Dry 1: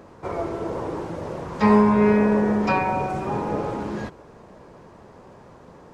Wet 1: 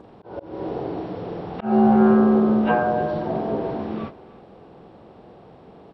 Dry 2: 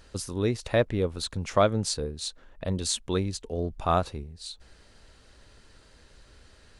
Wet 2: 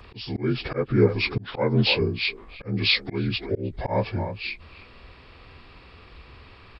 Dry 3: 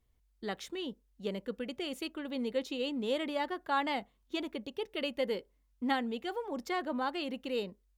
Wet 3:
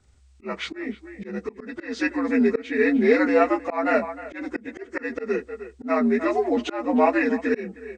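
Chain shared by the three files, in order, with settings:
partials spread apart or drawn together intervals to 81%
far-end echo of a speakerphone 310 ms, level −17 dB
volume swells 257 ms
normalise the peak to −6 dBFS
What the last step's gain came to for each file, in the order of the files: +3.0, +10.0, +17.0 decibels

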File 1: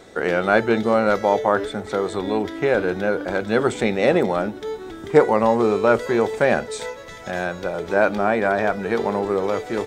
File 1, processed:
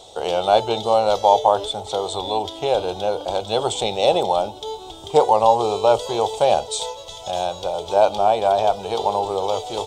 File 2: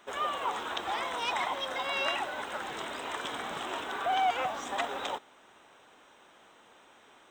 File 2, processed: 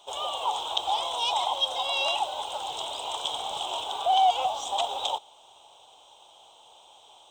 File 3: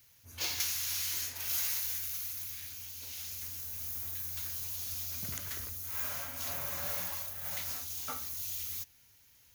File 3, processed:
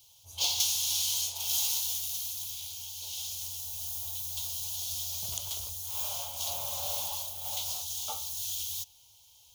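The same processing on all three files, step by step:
drawn EQ curve 100 Hz 0 dB, 240 Hz −14 dB, 850 Hz +9 dB, 1,800 Hz −22 dB, 3,200 Hz +12 dB, 4,700 Hz +6 dB, 8,200 Hz +8 dB, 13,000 Hz +1 dB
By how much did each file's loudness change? +0.5, +5.5, +3.5 LU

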